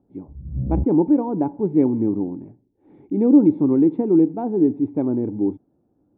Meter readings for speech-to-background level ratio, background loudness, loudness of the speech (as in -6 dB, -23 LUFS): 8.5 dB, -28.0 LUFS, -19.5 LUFS